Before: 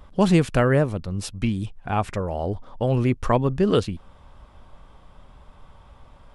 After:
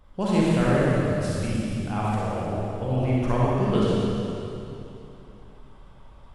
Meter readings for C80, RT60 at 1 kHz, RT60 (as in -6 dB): -3.0 dB, 2.8 s, 2.9 s